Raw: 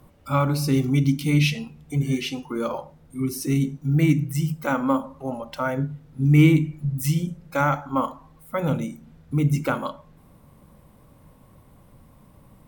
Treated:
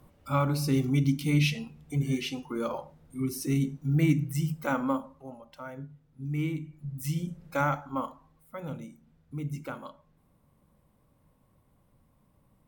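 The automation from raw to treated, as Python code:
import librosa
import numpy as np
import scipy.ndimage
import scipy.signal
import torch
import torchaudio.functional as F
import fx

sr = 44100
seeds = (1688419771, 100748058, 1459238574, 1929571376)

y = fx.gain(x, sr, db=fx.line((4.81, -5.0), (5.38, -16.0), (6.59, -16.0), (7.45, -4.0), (8.57, -14.0)))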